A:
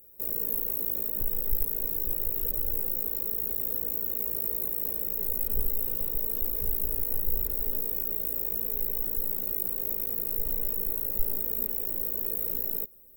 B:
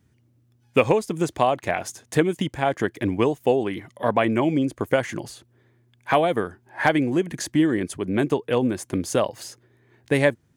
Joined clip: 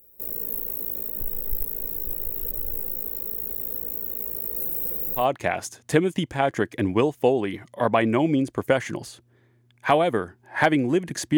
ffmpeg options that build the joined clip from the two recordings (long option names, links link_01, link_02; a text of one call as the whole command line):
ffmpeg -i cue0.wav -i cue1.wav -filter_complex "[0:a]asettb=1/sr,asplit=3[link_01][link_02][link_03];[link_01]atrim=end=4.564[link_04];[link_02]atrim=start=4.56:end=5.26,asetpts=PTS-STARTPTS,afade=type=in:duration=0.004:curve=qsin,afade=type=out:start_time=0.696:duration=0.004:curve=qsin,aecho=1:1:6.1:0.98,atrim=end_sample=30870[link_05];[link_03]atrim=start=5.256[link_06];[link_04][link_05]acrossfade=duration=0.004:curve1=hsin:curve2=qsin[link_07];[link_07][link_06]acrossfade=duration=0.004:curve1=qsin:curve2=hsin,apad=whole_dur=11.37,atrim=end=11.37,atrim=end=5.26,asetpts=PTS-STARTPTS[link_08];[1:a]atrim=start=1.37:end=7.6,asetpts=PTS-STARTPTS[link_09];[link_08][link_09]acrossfade=duration=0.12:curve1=tri:curve2=tri" out.wav